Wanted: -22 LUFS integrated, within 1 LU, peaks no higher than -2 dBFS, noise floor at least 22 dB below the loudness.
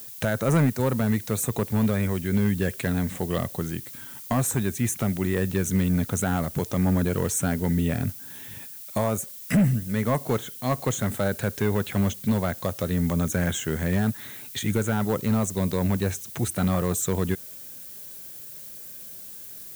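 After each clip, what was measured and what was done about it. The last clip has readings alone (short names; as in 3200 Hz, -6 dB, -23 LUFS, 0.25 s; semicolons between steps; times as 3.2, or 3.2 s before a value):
clipped 1.1%; flat tops at -15.5 dBFS; noise floor -41 dBFS; noise floor target -48 dBFS; loudness -25.5 LUFS; peak -15.5 dBFS; loudness target -22.0 LUFS
-> clip repair -15.5 dBFS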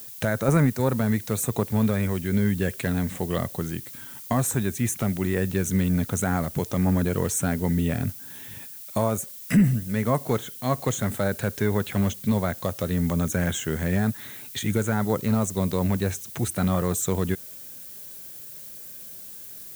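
clipped 0.0%; noise floor -41 dBFS; noise floor target -48 dBFS
-> denoiser 7 dB, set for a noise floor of -41 dBFS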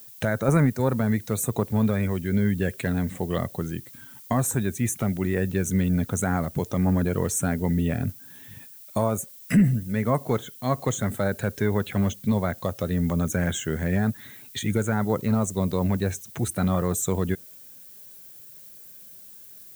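noise floor -46 dBFS; noise floor target -48 dBFS
-> denoiser 6 dB, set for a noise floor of -46 dBFS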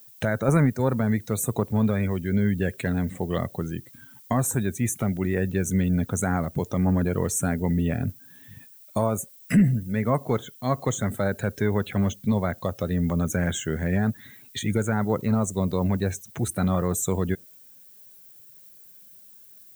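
noise floor -50 dBFS; loudness -25.5 LUFS; peak -7.5 dBFS; loudness target -22.0 LUFS
-> gain +3.5 dB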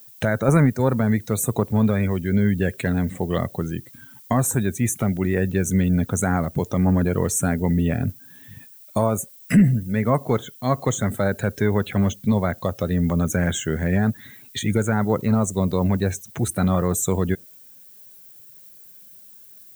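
loudness -22.0 LUFS; peak -4.0 dBFS; noise floor -47 dBFS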